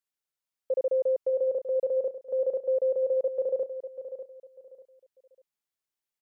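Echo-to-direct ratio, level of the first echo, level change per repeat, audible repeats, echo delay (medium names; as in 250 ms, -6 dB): -10.5 dB, -11.0 dB, -11.5 dB, 3, 595 ms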